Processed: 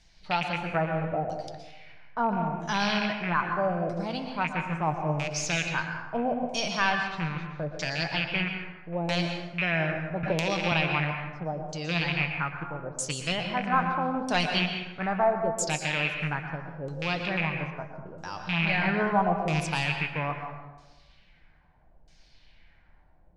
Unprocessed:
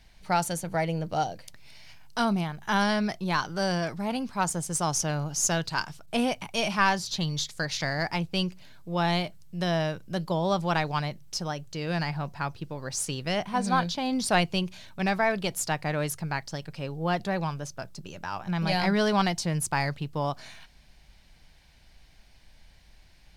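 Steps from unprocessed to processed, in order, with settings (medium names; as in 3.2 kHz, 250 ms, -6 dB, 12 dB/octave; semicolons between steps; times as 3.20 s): rattle on loud lows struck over -30 dBFS, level -18 dBFS; LFO low-pass saw down 0.77 Hz 460–7300 Hz; flange 1.5 Hz, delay 5.7 ms, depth 1.2 ms, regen +69%; plate-style reverb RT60 1.1 s, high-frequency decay 0.55×, pre-delay 105 ms, DRR 4.5 dB; 10.23–10.72 s: three bands compressed up and down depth 100%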